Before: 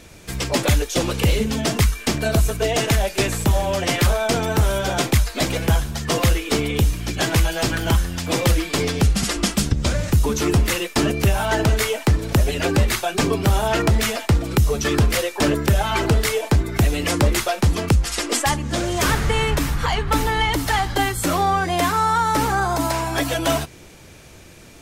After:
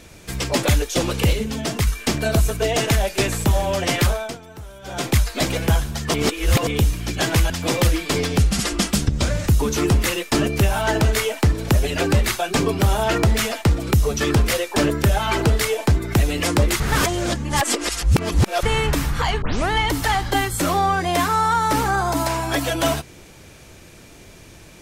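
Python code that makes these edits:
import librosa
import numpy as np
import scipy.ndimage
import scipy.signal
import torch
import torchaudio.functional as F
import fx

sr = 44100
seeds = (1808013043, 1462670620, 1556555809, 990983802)

y = fx.edit(x, sr, fx.clip_gain(start_s=1.33, length_s=0.54, db=-3.5),
    fx.fade_down_up(start_s=4.02, length_s=1.15, db=-19.5, fade_s=0.36),
    fx.reverse_span(start_s=6.14, length_s=0.53),
    fx.cut(start_s=7.5, length_s=0.64),
    fx.reverse_span(start_s=17.44, length_s=1.83),
    fx.tape_start(start_s=20.06, length_s=0.29), tone=tone)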